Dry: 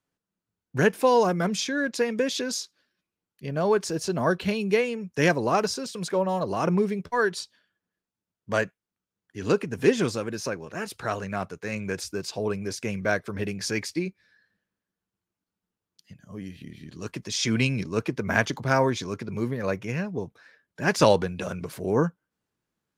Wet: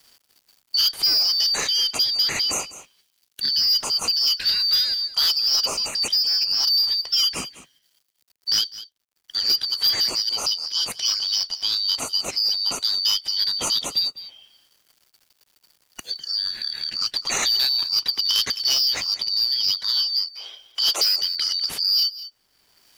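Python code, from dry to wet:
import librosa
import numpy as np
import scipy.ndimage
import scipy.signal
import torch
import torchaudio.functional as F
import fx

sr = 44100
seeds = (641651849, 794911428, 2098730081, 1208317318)

y = fx.band_shuffle(x, sr, order='4321')
y = fx.highpass(y, sr, hz=370.0, slope=24, at=(19.89, 21.18))
y = fx.quant_companded(y, sr, bits=8)
y = 10.0 ** (-19.5 / 20.0) * np.tanh(y / 10.0 ** (-19.5 / 20.0))
y = y + 10.0 ** (-19.5 / 20.0) * np.pad(y, (int(200 * sr / 1000.0), 0))[:len(y)]
y = fx.band_squash(y, sr, depth_pct=70)
y = y * librosa.db_to_amplitude(6.0)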